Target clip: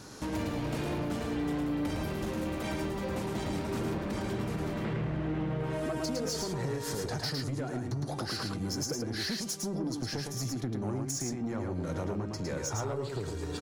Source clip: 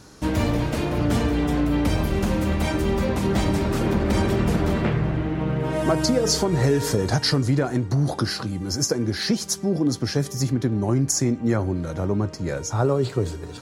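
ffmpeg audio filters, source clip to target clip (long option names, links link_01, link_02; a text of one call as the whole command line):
ffmpeg -i in.wav -af "highpass=frequency=94:poles=1,acompressor=threshold=-29dB:ratio=12,asoftclip=type=tanh:threshold=-29dB,aecho=1:1:109:0.668" out.wav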